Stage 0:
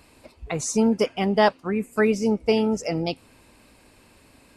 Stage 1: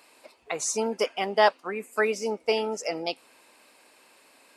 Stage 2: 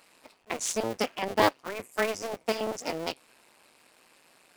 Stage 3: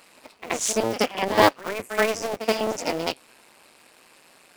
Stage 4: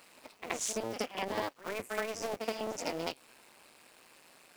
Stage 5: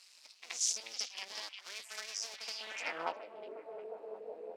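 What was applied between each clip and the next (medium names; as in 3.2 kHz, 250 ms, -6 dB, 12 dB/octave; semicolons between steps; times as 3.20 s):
high-pass 500 Hz 12 dB/octave
cycle switcher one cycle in 2, muted
pre-echo 77 ms -12 dB; trim +6 dB
compression 12:1, threshold -25 dBFS, peak gain reduction 16 dB; bit crusher 10-bit; trim -5.5 dB
repeats whose band climbs or falls 359 ms, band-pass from 3 kHz, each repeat -0.7 oct, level -3.5 dB; band-pass sweep 5.3 kHz -> 450 Hz, 2.54–3.34 s; trim +7.5 dB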